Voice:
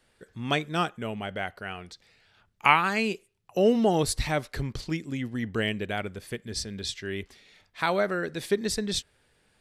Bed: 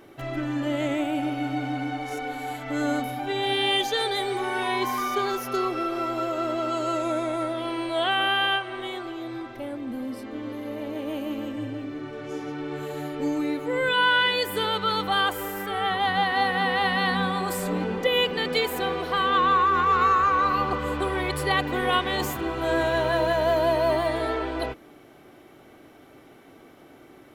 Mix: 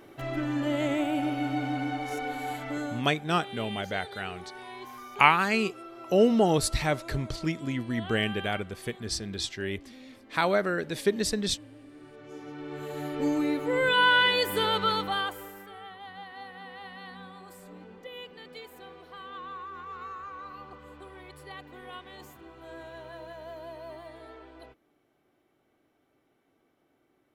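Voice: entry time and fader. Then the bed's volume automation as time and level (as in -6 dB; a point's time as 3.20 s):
2.55 s, +0.5 dB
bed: 2.64 s -1.5 dB
3.11 s -17 dB
11.79 s -17 dB
13.20 s -0.5 dB
14.85 s -0.5 dB
15.93 s -20.5 dB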